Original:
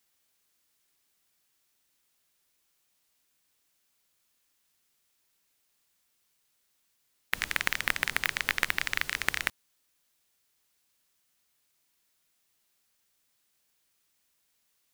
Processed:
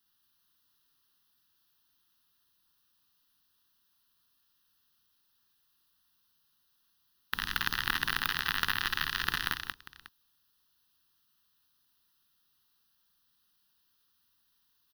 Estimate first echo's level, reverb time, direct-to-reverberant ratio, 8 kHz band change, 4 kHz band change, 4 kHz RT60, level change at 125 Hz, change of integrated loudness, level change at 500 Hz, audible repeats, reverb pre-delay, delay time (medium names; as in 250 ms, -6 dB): -4.0 dB, no reverb, no reverb, -5.5 dB, +2.0 dB, no reverb, +3.0 dB, -2.0 dB, -7.5 dB, 3, no reverb, 53 ms